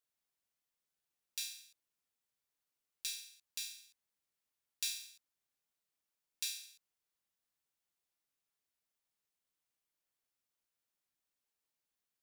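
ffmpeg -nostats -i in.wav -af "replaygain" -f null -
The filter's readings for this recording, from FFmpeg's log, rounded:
track_gain = +26.8 dB
track_peak = 0.106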